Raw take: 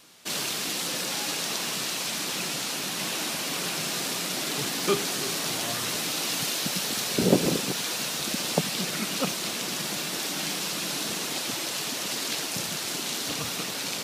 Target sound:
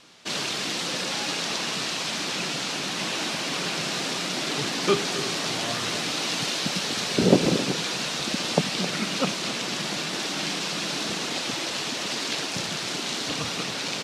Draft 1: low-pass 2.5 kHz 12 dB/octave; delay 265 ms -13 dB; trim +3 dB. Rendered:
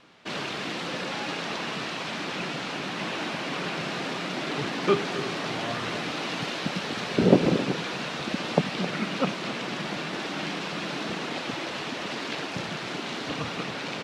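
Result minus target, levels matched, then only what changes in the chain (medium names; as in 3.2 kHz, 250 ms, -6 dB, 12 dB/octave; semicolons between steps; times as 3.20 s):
8 kHz band -10.0 dB
change: low-pass 5.8 kHz 12 dB/octave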